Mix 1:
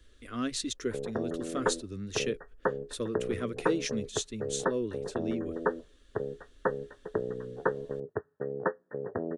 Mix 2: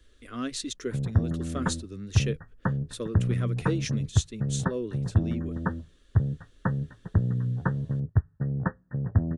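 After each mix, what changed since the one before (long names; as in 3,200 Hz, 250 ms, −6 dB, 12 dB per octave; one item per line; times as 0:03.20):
background: remove high-pass with resonance 430 Hz, resonance Q 4.6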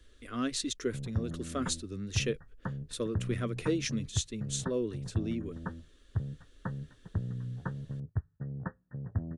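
background −10.0 dB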